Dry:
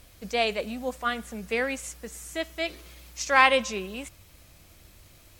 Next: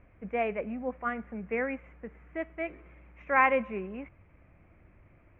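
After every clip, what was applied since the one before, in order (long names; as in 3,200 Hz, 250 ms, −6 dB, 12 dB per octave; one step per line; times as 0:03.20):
elliptic low-pass filter 2,300 Hz, stop band 50 dB
parametric band 210 Hz +4.5 dB 2.3 octaves
level −4.5 dB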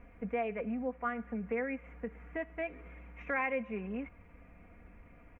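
comb filter 4.2 ms
downward compressor 2.5 to 1, threshold −38 dBFS, peak gain reduction 13.5 dB
level +2 dB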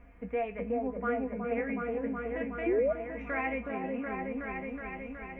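tuned comb filter 53 Hz, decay 0.19 s, harmonics odd, mix 80%
echo whose low-pass opens from repeat to repeat 370 ms, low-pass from 750 Hz, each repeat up 1 octave, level 0 dB
sound drawn into the spectrogram rise, 0:02.66–0:02.93, 320–670 Hz −33 dBFS
level +6 dB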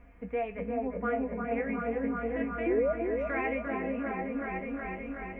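bucket-brigade delay 348 ms, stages 4,096, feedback 51%, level −5 dB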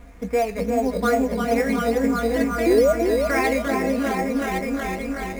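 variable-slope delta modulation 64 kbit/s
in parallel at −3 dB: sample-and-hold swept by an LFO 8×, swing 60% 2.3 Hz
on the sum: level +6.5 dB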